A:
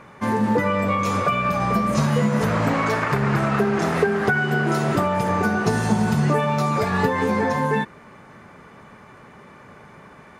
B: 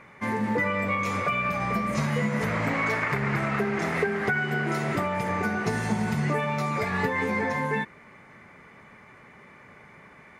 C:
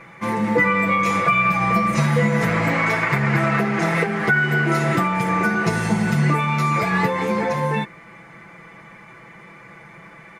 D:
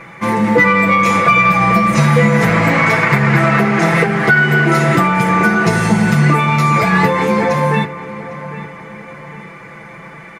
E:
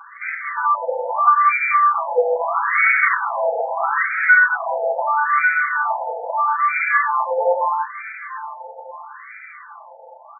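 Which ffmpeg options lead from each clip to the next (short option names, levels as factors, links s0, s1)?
-af "equalizer=f=2100:w=3.3:g=11,volume=0.447"
-af "aecho=1:1:6:0.89,volume=1.68"
-filter_complex "[0:a]asoftclip=type=tanh:threshold=0.447,asplit=2[s0][s1];[s1]adelay=804,lowpass=f=2300:p=1,volume=0.2,asplit=2[s2][s3];[s3]adelay=804,lowpass=f=2300:p=1,volume=0.44,asplit=2[s4][s5];[s5]adelay=804,lowpass=f=2300:p=1,volume=0.44,asplit=2[s6][s7];[s7]adelay=804,lowpass=f=2300:p=1,volume=0.44[s8];[s0][s2][s4][s6][s8]amix=inputs=5:normalize=0,volume=2.37"
-af "aecho=1:1:636|1272|1908:0.266|0.0825|0.0256,afftfilt=real='re*between(b*sr/1024,640*pow(1800/640,0.5+0.5*sin(2*PI*0.77*pts/sr))/1.41,640*pow(1800/640,0.5+0.5*sin(2*PI*0.77*pts/sr))*1.41)':imag='im*between(b*sr/1024,640*pow(1800/640,0.5+0.5*sin(2*PI*0.77*pts/sr))/1.41,640*pow(1800/640,0.5+0.5*sin(2*PI*0.77*pts/sr))*1.41)':win_size=1024:overlap=0.75"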